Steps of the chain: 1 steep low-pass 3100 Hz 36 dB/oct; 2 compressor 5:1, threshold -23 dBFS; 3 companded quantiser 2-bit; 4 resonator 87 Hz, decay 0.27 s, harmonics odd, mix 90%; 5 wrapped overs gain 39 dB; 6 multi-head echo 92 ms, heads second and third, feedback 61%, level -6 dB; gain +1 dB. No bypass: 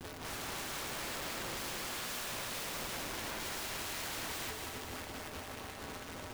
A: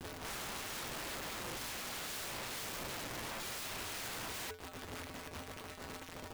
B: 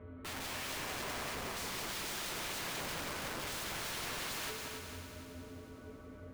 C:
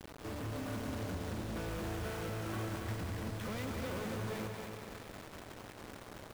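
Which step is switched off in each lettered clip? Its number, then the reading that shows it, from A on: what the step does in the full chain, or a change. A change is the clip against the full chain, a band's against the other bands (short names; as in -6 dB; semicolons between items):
6, echo-to-direct -1.5 dB to none; 3, distortion -4 dB; 4, 125 Hz band +14.0 dB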